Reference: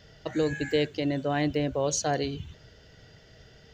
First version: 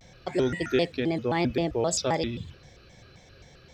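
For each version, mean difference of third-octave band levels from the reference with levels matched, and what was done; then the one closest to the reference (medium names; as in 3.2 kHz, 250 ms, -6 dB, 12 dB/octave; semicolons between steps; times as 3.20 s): 4.5 dB: vibrato with a chosen wave square 3.8 Hz, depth 250 cents; trim +1 dB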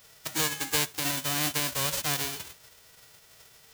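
13.0 dB: formants flattened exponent 0.1; trim -2 dB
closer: first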